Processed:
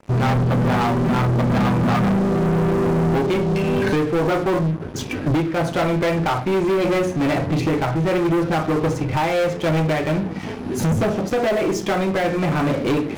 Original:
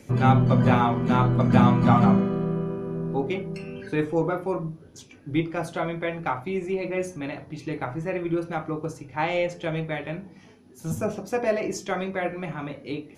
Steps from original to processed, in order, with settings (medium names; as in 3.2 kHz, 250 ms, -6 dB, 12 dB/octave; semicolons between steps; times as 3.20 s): recorder AGC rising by 19 dB/s; low-pass 2 kHz 6 dB/octave; waveshaping leveller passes 5; trim -9 dB